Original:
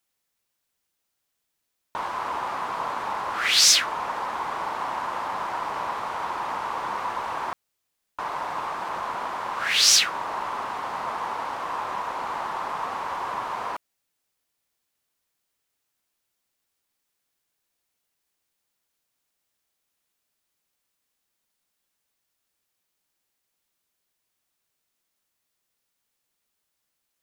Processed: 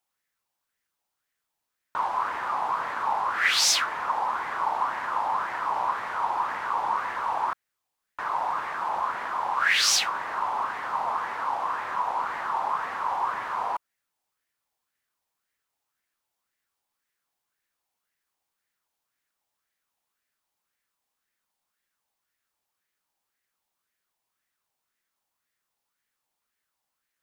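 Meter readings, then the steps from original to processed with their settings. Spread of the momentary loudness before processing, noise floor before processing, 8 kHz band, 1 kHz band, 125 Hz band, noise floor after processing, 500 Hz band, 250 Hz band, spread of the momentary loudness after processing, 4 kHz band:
15 LU, −79 dBFS, −5.5 dB, +2.0 dB, can't be measured, −83 dBFS, −2.5 dB, −5.0 dB, 9 LU, −5.0 dB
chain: auto-filter bell 1.9 Hz 790–1,900 Hz +12 dB
level −5.5 dB

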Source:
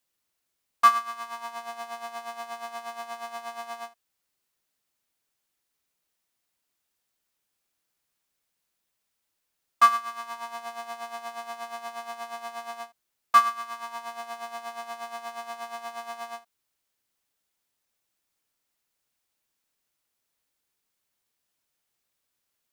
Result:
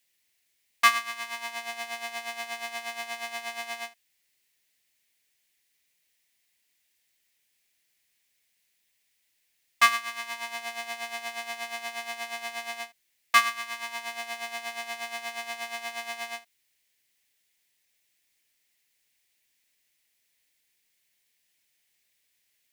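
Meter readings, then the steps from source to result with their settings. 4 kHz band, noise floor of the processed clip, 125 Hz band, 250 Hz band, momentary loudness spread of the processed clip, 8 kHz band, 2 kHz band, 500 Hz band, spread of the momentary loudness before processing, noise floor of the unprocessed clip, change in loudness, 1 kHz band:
+8.0 dB, −74 dBFS, can't be measured, 0.0 dB, 13 LU, +7.0 dB, +7.5 dB, −1.5 dB, 17 LU, −80 dBFS, −0.5 dB, −4.5 dB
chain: high shelf with overshoot 1,600 Hz +6.5 dB, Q 3

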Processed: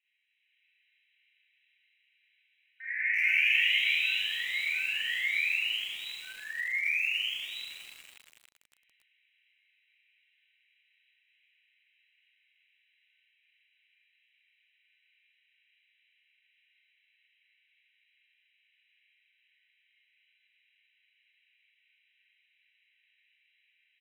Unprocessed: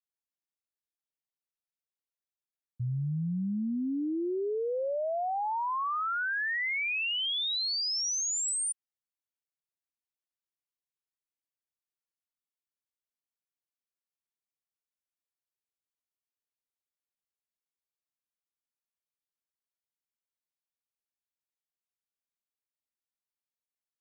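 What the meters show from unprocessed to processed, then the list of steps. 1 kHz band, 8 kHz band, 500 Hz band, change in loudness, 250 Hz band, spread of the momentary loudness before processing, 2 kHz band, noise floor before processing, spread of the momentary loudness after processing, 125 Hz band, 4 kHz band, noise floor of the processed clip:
below −25 dB, −19.5 dB, below −30 dB, +2.0 dB, below −35 dB, 5 LU, +6.5 dB, below −85 dBFS, 16 LU, below −35 dB, +1.0 dB, −73 dBFS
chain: high-shelf EQ 2,500 Hz +3 dB
automatic gain control gain up to 5.5 dB
brickwall limiter −25.5 dBFS, peak gain reduction 5.5 dB
sine wavefolder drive 20 dB, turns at −25 dBFS
flanger 0.62 Hz, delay 3.3 ms, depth 3.7 ms, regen +86%
linear-phase brick-wall band-pass 1,500–4,000 Hz
phaser with its sweep stopped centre 2,400 Hz, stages 8
echo with shifted repeats 86 ms, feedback 35%, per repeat +35 Hz, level −16 dB
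four-comb reverb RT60 1 s, combs from 29 ms, DRR −8 dB
feedback echo at a low word length 281 ms, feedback 80%, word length 7 bits, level −13 dB
level +2 dB

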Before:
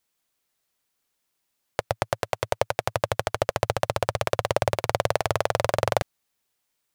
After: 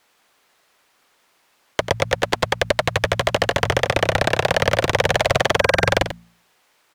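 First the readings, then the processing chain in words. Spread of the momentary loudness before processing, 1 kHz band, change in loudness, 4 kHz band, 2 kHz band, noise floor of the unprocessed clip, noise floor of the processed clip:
5 LU, +5.0 dB, +7.0 dB, +11.0 dB, +12.0 dB, −77 dBFS, −63 dBFS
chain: hum removal 57.48 Hz, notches 4
gain on a spectral selection 0:05.60–0:05.88, 1,600–5,800 Hz −18 dB
brickwall limiter −7 dBFS, peak gain reduction 3.5 dB
mid-hump overdrive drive 16 dB, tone 1,400 Hz, clips at −7 dBFS
sine wavefolder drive 11 dB, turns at −8.5 dBFS
single-tap delay 92 ms −10.5 dB

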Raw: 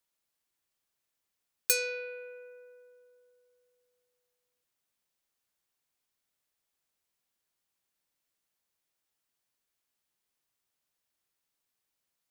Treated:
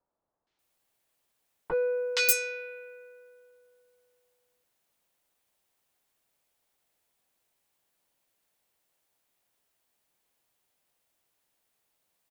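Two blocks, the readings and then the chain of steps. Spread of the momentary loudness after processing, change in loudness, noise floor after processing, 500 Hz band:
18 LU, +4.0 dB, −80 dBFS, +10.0 dB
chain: parametric band 730 Hz +5.5 dB 1.5 octaves
wrap-around overflow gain 19.5 dB
three-band delay without the direct sound lows, mids, highs 470/590 ms, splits 1,200/5,400 Hz
level +7 dB

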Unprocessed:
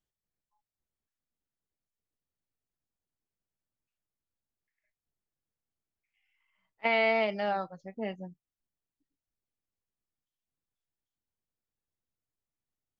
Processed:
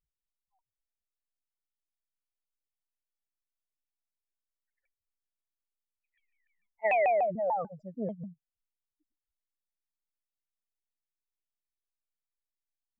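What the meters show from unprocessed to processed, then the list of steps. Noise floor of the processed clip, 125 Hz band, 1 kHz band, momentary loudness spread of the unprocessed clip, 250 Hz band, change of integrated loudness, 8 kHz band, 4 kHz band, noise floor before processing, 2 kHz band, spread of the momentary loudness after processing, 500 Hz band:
below −85 dBFS, +2.0 dB, +3.0 dB, 18 LU, −2.0 dB, 0.0 dB, can't be measured, below −25 dB, below −85 dBFS, −5.0 dB, 17 LU, +1.5 dB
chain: expanding power law on the bin magnitudes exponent 3.3
pitch modulation by a square or saw wave saw down 6.8 Hz, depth 250 cents
level +1.5 dB

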